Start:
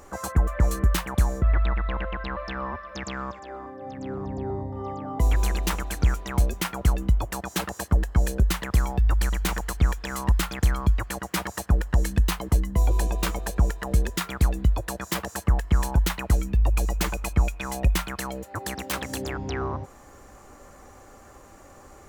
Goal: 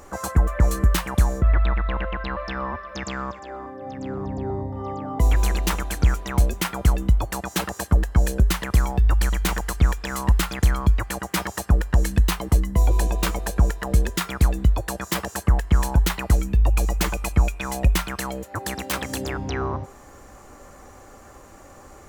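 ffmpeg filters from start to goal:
-af "bandreject=f=397.8:t=h:w=4,bandreject=f=795.6:t=h:w=4,bandreject=f=1.1934k:t=h:w=4,bandreject=f=1.5912k:t=h:w=4,bandreject=f=1.989k:t=h:w=4,bandreject=f=2.3868k:t=h:w=4,bandreject=f=2.7846k:t=h:w=4,bandreject=f=3.1824k:t=h:w=4,bandreject=f=3.5802k:t=h:w=4,bandreject=f=3.978k:t=h:w=4,bandreject=f=4.3758k:t=h:w=4,bandreject=f=4.7736k:t=h:w=4,bandreject=f=5.1714k:t=h:w=4,bandreject=f=5.5692k:t=h:w=4,bandreject=f=5.967k:t=h:w=4,bandreject=f=6.3648k:t=h:w=4,bandreject=f=6.7626k:t=h:w=4,bandreject=f=7.1604k:t=h:w=4,bandreject=f=7.5582k:t=h:w=4,bandreject=f=7.956k:t=h:w=4,bandreject=f=8.3538k:t=h:w=4,bandreject=f=8.7516k:t=h:w=4,bandreject=f=9.1494k:t=h:w=4,bandreject=f=9.5472k:t=h:w=4,bandreject=f=9.945k:t=h:w=4,bandreject=f=10.3428k:t=h:w=4,bandreject=f=10.7406k:t=h:w=4,bandreject=f=11.1384k:t=h:w=4,bandreject=f=11.5362k:t=h:w=4,bandreject=f=11.934k:t=h:w=4,bandreject=f=12.3318k:t=h:w=4,bandreject=f=12.7296k:t=h:w=4,volume=3dB"

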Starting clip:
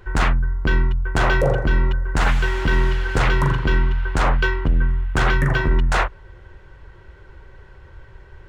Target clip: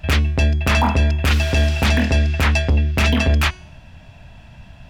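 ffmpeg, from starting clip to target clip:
-af "asetrate=76440,aresample=44100,bandreject=f=367.9:t=h:w=4,bandreject=f=735.8:t=h:w=4,bandreject=f=1.1037k:t=h:w=4,bandreject=f=1.4716k:t=h:w=4,bandreject=f=1.8395k:t=h:w=4,bandreject=f=2.2074k:t=h:w=4,bandreject=f=2.5753k:t=h:w=4,bandreject=f=2.9432k:t=h:w=4,bandreject=f=3.3111k:t=h:w=4,bandreject=f=3.679k:t=h:w=4,bandreject=f=4.0469k:t=h:w=4,bandreject=f=4.4148k:t=h:w=4,bandreject=f=4.7827k:t=h:w=4,bandreject=f=5.1506k:t=h:w=4,bandreject=f=5.5185k:t=h:w=4,bandreject=f=5.8864k:t=h:w=4,bandreject=f=6.2543k:t=h:w=4,bandreject=f=6.6222k:t=h:w=4,bandreject=f=6.9901k:t=h:w=4,bandreject=f=7.358k:t=h:w=4,bandreject=f=7.7259k:t=h:w=4,bandreject=f=8.0938k:t=h:w=4,bandreject=f=8.4617k:t=h:w=4,bandreject=f=8.8296k:t=h:w=4,bandreject=f=9.1975k:t=h:w=4,bandreject=f=9.5654k:t=h:w=4,bandreject=f=9.9333k:t=h:w=4,bandreject=f=10.3012k:t=h:w=4,bandreject=f=10.6691k:t=h:w=4,bandreject=f=11.037k:t=h:w=4,volume=1dB"

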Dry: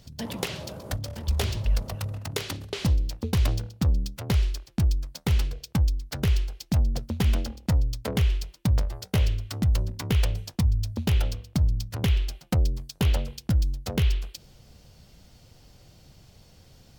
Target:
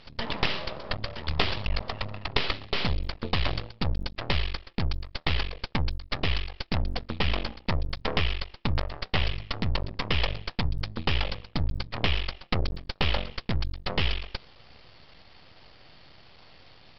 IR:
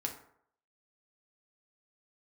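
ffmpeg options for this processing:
-af "asuperstop=centerf=1500:order=4:qfactor=5.7,tiltshelf=f=630:g=-10,aresample=11025,aeval=exprs='max(val(0),0)':c=same,aresample=44100,aeval=exprs='0.473*(cos(1*acos(clip(val(0)/0.473,-1,1)))-cos(1*PI/2))+0.0119*(cos(4*acos(clip(val(0)/0.473,-1,1)))-cos(4*PI/2))':c=same,aemphasis=mode=reproduction:type=75fm,volume=7dB"

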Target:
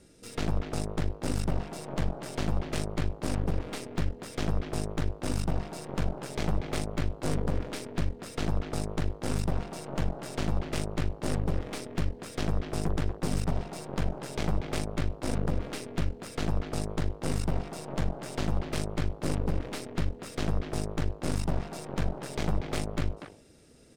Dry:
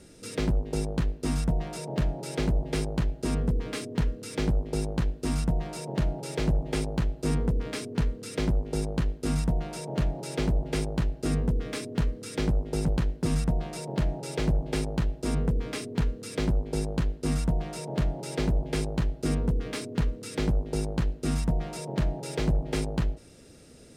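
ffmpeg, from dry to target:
-filter_complex "[0:a]aeval=exprs='0.141*(cos(1*acos(clip(val(0)/0.141,-1,1)))-cos(1*PI/2))+0.0631*(cos(4*acos(clip(val(0)/0.141,-1,1)))-cos(4*PI/2))':c=same,asplit=2[a][b];[b]adelay=240,highpass=300,lowpass=3.4k,asoftclip=type=hard:threshold=-21dB,volume=-6dB[c];[a][c]amix=inputs=2:normalize=0,volume=-6dB"

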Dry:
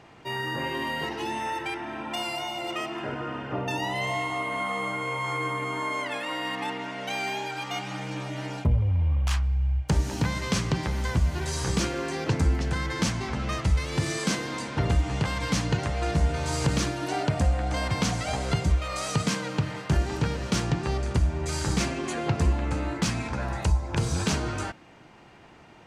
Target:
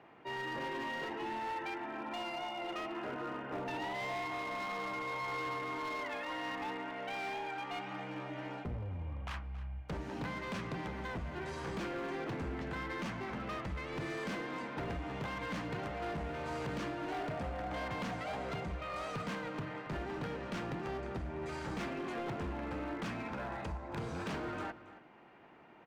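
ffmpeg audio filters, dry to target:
-filter_complex "[0:a]acrossover=split=180 2900:gain=0.224 1 0.1[a][b][c];[a][b][c]amix=inputs=3:normalize=0,asoftclip=type=hard:threshold=-29.5dB,asplit=2[d][e];[e]adelay=274.1,volume=-15dB,highshelf=f=4k:g=-6.17[f];[d][f]amix=inputs=2:normalize=0,volume=-6dB"

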